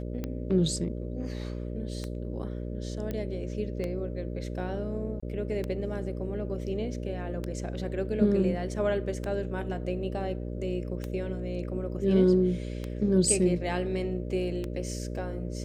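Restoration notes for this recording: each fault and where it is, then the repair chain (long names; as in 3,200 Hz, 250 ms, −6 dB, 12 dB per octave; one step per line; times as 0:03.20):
mains buzz 60 Hz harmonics 10 −35 dBFS
scratch tick 33 1/3 rpm −20 dBFS
0:03.11: click −21 dBFS
0:05.20–0:05.22: drop-out 25 ms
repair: click removal
hum removal 60 Hz, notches 10
repair the gap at 0:05.20, 25 ms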